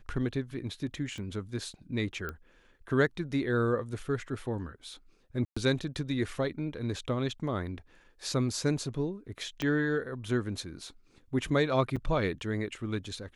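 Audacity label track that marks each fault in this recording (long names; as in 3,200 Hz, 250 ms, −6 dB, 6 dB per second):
1.180000	1.180000	click −30 dBFS
2.290000	2.290000	click −23 dBFS
5.450000	5.570000	drop-out 115 ms
9.620000	9.620000	click −18 dBFS
11.960000	11.970000	drop-out 6.1 ms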